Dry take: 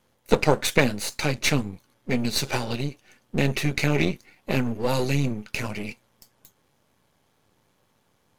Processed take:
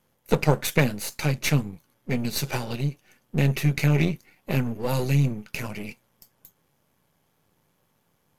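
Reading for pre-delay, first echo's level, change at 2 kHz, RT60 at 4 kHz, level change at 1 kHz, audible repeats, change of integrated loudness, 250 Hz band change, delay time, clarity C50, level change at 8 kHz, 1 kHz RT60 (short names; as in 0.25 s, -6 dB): none, none, -3.0 dB, none, -3.0 dB, none, -0.5 dB, -0.5 dB, none, none, -2.0 dB, none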